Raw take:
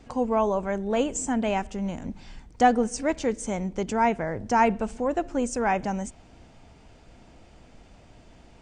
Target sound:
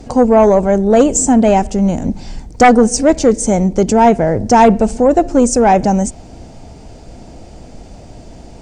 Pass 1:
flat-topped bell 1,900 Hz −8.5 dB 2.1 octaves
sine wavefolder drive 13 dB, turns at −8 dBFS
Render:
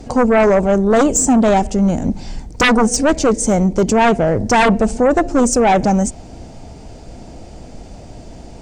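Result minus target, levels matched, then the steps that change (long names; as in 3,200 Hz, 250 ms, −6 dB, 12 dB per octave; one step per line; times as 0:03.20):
sine wavefolder: distortion +9 dB
change: sine wavefolder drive 13 dB, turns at −2 dBFS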